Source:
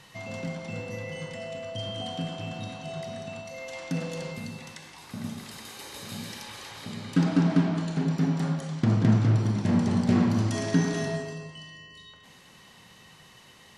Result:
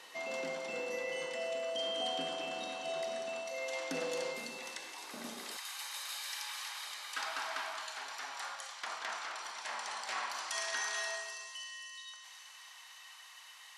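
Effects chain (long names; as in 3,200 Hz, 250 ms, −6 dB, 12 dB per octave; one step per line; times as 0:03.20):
high-pass filter 330 Hz 24 dB per octave, from 0:05.57 890 Hz
delay with a high-pass on its return 263 ms, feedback 74%, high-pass 5,200 Hz, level −8 dB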